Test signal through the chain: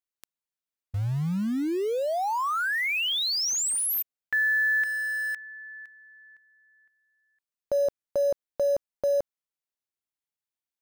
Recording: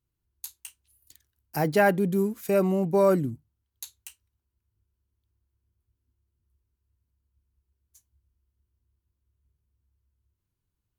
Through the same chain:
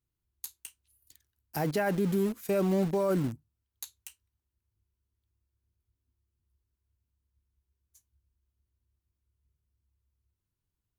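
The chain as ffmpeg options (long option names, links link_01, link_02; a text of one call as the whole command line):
ffmpeg -i in.wav -filter_complex "[0:a]asplit=2[link_01][link_02];[link_02]acrusher=bits=4:mix=0:aa=0.000001,volume=-9.5dB[link_03];[link_01][link_03]amix=inputs=2:normalize=0,alimiter=limit=-16dB:level=0:latency=1:release=29,volume=-4dB" out.wav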